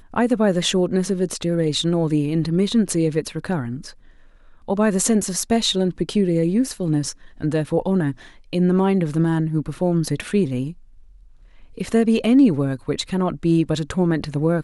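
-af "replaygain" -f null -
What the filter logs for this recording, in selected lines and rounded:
track_gain = +1.2 dB
track_peak = 0.420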